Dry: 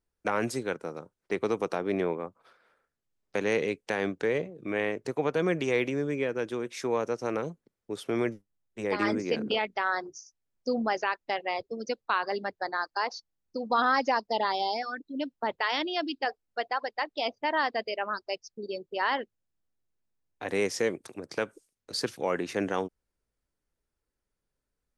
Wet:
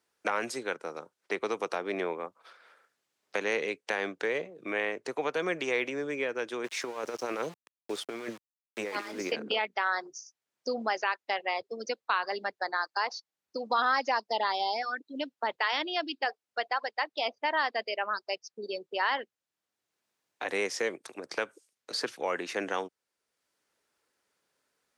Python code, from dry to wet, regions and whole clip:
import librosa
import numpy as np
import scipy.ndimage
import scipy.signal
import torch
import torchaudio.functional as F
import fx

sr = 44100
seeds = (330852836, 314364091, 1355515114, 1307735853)

y = fx.chain(x, sr, fx.over_compress(threshold_db=-32.0, ratio=-0.5),
    fx.sample_gate(floor_db=-45.0), at=(6.64, 9.32))
y = fx.weighting(y, sr, curve='A')
y = fx.band_squash(y, sr, depth_pct=40)